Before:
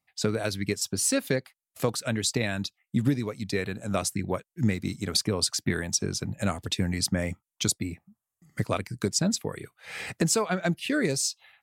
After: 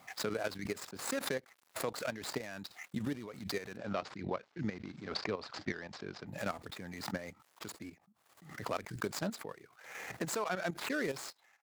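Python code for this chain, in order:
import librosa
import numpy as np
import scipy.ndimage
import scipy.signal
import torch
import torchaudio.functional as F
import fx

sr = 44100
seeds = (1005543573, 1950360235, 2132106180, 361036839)

y = scipy.ndimage.median_filter(x, 15, mode='constant')
y = fx.highpass(y, sr, hz=620.0, slope=6)
y = fx.level_steps(y, sr, step_db=11)
y = fx.lowpass(y, sr, hz=5300.0, slope=24, at=(3.77, 6.27))
y = fx.pre_swell(y, sr, db_per_s=78.0)
y = F.gain(torch.from_numpy(y), -1.0).numpy()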